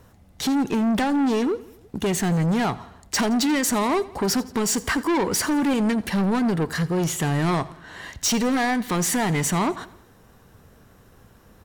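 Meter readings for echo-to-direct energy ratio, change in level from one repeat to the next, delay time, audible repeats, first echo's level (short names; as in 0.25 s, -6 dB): -18.5 dB, -5.0 dB, 85 ms, 3, -20.0 dB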